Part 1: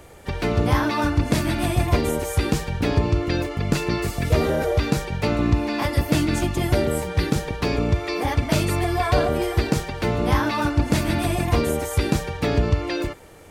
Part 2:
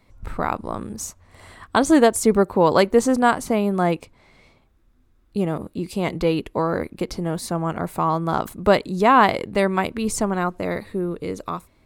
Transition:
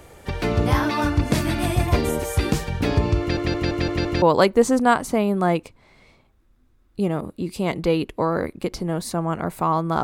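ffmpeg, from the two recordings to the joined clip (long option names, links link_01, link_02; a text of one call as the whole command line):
ffmpeg -i cue0.wav -i cue1.wav -filter_complex "[0:a]apad=whole_dur=10.03,atrim=end=10.03,asplit=6[link_01][link_02][link_03][link_04][link_05][link_06];[link_01]atrim=end=3.372[link_07];[link_02]atrim=start=3.198:end=3.372[link_08];[link_03]atrim=start=3.198:end=3.372[link_09];[link_04]atrim=start=3.198:end=3.372[link_10];[link_05]atrim=start=3.198:end=3.372[link_11];[link_06]atrim=start=3.198:end=3.372[link_12];[1:a]atrim=start=2.588:end=8.4[link_13];[link_07][link_08]acrossfade=duration=0.004:curve1=hsin:curve2=hsin[link_14];[link_14][link_09]acrossfade=duration=0.004:curve1=hsin:curve2=hsin[link_15];[link_15][link_10]acrossfade=duration=0.004:curve1=hsin:curve2=hsin[link_16];[link_16][link_11]acrossfade=duration=0.004:curve1=hsin:curve2=hsin[link_17];[link_17][link_12]acrossfade=duration=0.004:curve1=hsin:curve2=hsin[link_18];[link_18][link_13]acrossfade=duration=0.004:curve1=hsin:curve2=hsin" out.wav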